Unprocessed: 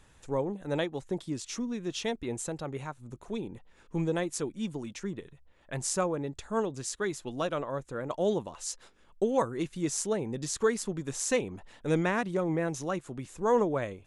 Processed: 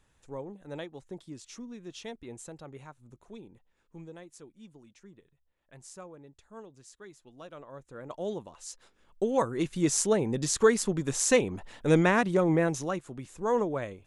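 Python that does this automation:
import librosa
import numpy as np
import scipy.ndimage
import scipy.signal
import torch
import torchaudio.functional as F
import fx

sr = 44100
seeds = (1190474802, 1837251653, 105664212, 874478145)

y = fx.gain(x, sr, db=fx.line((3.09, -9.0), (4.18, -17.0), (7.33, -17.0), (8.1, -6.5), (8.68, -6.5), (9.82, 5.0), (12.61, 5.0), (13.07, -2.0)))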